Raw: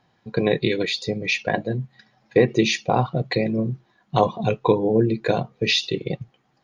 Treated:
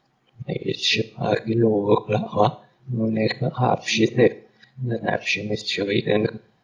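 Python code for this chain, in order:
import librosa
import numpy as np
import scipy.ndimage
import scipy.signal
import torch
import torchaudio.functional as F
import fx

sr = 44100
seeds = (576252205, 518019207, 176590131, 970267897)

y = np.flip(x).copy()
y = fx.rev_schroeder(y, sr, rt60_s=0.43, comb_ms=25, drr_db=17.0)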